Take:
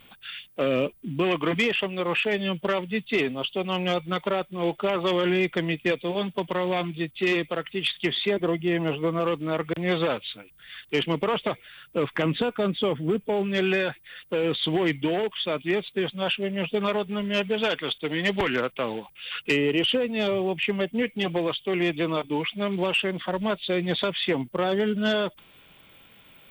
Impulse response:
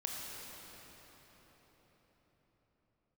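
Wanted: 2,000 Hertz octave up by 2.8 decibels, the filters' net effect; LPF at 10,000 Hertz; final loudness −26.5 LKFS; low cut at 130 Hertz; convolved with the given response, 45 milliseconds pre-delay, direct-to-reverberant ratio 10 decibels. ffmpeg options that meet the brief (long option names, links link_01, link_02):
-filter_complex "[0:a]highpass=130,lowpass=10000,equalizer=frequency=2000:width_type=o:gain=3.5,asplit=2[link_01][link_02];[1:a]atrim=start_sample=2205,adelay=45[link_03];[link_02][link_03]afir=irnorm=-1:irlink=0,volume=-11.5dB[link_04];[link_01][link_04]amix=inputs=2:normalize=0,volume=-1.5dB"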